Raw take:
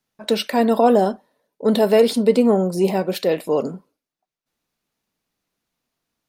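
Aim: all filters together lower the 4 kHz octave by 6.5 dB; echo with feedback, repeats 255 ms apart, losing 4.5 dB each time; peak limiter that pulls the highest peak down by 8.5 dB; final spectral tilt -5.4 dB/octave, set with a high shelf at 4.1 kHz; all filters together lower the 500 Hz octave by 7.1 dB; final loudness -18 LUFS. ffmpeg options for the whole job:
-af "equalizer=f=500:t=o:g=-8.5,equalizer=f=4000:t=o:g=-5,highshelf=f=4100:g=-6,alimiter=limit=0.158:level=0:latency=1,aecho=1:1:255|510|765|1020|1275|1530|1785|2040|2295:0.596|0.357|0.214|0.129|0.0772|0.0463|0.0278|0.0167|0.01,volume=2.24"

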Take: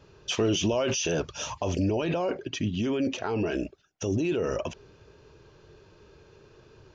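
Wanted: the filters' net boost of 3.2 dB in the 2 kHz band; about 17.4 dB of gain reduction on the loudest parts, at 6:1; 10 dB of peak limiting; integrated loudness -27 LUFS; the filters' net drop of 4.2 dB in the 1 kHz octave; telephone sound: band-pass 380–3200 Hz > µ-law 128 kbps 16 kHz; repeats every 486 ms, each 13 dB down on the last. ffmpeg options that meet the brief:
-af "equalizer=f=1000:t=o:g=-8,equalizer=f=2000:t=o:g=8.5,acompressor=threshold=0.00794:ratio=6,alimiter=level_in=4.73:limit=0.0631:level=0:latency=1,volume=0.211,highpass=380,lowpass=3200,aecho=1:1:486|972|1458:0.224|0.0493|0.0108,volume=15.8" -ar 16000 -c:a pcm_mulaw

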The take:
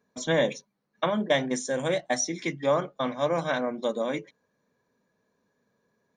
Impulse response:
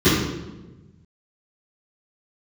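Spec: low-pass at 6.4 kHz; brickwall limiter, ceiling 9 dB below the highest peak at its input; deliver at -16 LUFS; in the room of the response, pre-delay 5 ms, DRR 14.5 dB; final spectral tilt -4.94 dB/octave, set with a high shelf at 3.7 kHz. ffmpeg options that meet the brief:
-filter_complex "[0:a]lowpass=6400,highshelf=f=3700:g=-6,alimiter=limit=0.0841:level=0:latency=1,asplit=2[s0][s1];[1:a]atrim=start_sample=2205,adelay=5[s2];[s1][s2]afir=irnorm=-1:irlink=0,volume=0.0133[s3];[s0][s3]amix=inputs=2:normalize=0,volume=6.31"

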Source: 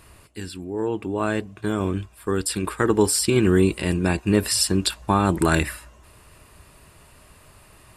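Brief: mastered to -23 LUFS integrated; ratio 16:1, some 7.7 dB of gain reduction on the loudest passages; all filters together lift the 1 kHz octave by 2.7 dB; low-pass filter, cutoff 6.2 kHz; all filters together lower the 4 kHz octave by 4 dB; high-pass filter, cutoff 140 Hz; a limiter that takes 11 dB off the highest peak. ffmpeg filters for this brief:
-af "highpass=140,lowpass=6200,equalizer=f=1000:t=o:g=3.5,equalizer=f=4000:t=o:g=-4,acompressor=threshold=0.1:ratio=16,volume=2.24,alimiter=limit=0.299:level=0:latency=1"

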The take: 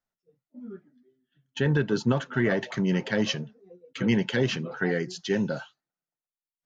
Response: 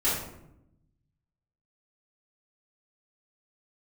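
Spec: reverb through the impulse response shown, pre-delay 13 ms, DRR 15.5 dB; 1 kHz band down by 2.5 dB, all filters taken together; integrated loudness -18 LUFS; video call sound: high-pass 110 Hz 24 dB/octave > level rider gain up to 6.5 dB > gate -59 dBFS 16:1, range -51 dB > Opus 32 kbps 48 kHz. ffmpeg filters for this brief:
-filter_complex "[0:a]equalizer=f=1000:t=o:g=-3.5,asplit=2[s0][s1];[1:a]atrim=start_sample=2205,adelay=13[s2];[s1][s2]afir=irnorm=-1:irlink=0,volume=0.0473[s3];[s0][s3]amix=inputs=2:normalize=0,highpass=f=110:w=0.5412,highpass=f=110:w=1.3066,dynaudnorm=m=2.11,agate=range=0.00282:threshold=0.00112:ratio=16,volume=2.99" -ar 48000 -c:a libopus -b:a 32k

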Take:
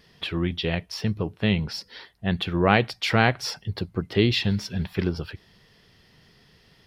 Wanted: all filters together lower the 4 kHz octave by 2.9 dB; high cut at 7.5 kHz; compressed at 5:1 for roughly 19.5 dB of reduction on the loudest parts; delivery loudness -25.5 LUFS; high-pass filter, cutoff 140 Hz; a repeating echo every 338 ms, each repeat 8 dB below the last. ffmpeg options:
-af "highpass=140,lowpass=7500,equalizer=f=4000:t=o:g=-3.5,acompressor=threshold=0.0141:ratio=5,aecho=1:1:338|676|1014|1352|1690:0.398|0.159|0.0637|0.0255|0.0102,volume=5.31"

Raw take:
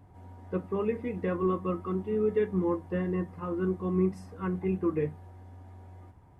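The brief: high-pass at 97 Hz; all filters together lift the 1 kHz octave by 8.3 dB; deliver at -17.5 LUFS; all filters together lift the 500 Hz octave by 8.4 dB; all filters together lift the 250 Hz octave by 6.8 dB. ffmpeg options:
-af "highpass=97,equalizer=f=250:t=o:g=8.5,equalizer=f=500:t=o:g=6,equalizer=f=1000:t=o:g=8,volume=2"

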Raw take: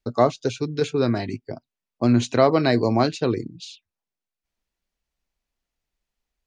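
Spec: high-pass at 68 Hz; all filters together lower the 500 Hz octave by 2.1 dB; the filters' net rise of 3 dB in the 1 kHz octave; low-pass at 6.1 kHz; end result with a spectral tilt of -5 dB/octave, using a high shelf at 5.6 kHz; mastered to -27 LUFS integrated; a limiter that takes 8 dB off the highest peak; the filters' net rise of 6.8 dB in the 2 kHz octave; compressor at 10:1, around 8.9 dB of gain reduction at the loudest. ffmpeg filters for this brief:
-af "highpass=68,lowpass=6100,equalizer=f=500:t=o:g=-4.5,equalizer=f=1000:t=o:g=4,equalizer=f=2000:t=o:g=8,highshelf=f=5600:g=-3.5,acompressor=threshold=0.0891:ratio=10,volume=1.5,alimiter=limit=0.2:level=0:latency=1"

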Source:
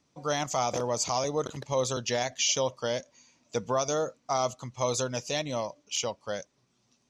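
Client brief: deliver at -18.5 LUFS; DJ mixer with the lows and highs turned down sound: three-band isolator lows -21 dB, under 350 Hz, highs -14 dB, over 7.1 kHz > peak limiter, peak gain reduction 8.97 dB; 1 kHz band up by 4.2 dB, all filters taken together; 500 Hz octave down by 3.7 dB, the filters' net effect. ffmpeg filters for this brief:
-filter_complex "[0:a]acrossover=split=350 7100:gain=0.0891 1 0.2[s0][s1][s2];[s0][s1][s2]amix=inputs=3:normalize=0,equalizer=f=500:t=o:g=-5.5,equalizer=f=1000:t=o:g=7.5,volume=5.96,alimiter=limit=0.501:level=0:latency=1"

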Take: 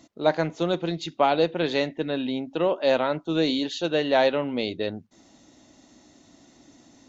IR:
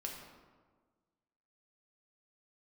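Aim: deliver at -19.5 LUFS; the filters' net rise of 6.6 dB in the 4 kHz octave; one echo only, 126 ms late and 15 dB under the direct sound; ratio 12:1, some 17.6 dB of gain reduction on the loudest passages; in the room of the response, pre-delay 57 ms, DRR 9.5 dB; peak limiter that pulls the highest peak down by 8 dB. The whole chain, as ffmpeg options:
-filter_complex "[0:a]equalizer=f=4000:t=o:g=7.5,acompressor=threshold=0.0224:ratio=12,alimiter=level_in=1.5:limit=0.0631:level=0:latency=1,volume=0.668,aecho=1:1:126:0.178,asplit=2[s0][s1];[1:a]atrim=start_sample=2205,adelay=57[s2];[s1][s2]afir=irnorm=-1:irlink=0,volume=0.376[s3];[s0][s3]amix=inputs=2:normalize=0,volume=8.91"

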